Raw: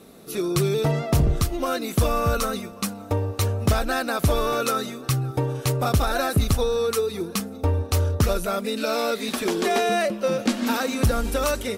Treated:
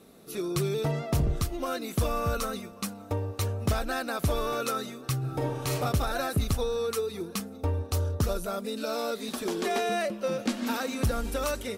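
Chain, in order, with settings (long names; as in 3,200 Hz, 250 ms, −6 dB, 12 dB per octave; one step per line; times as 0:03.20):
0:05.17–0:05.74: thrown reverb, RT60 0.92 s, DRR −2 dB
0:07.86–0:09.51: dynamic equaliser 2,200 Hz, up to −6 dB, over −45 dBFS, Q 1.6
level −6.5 dB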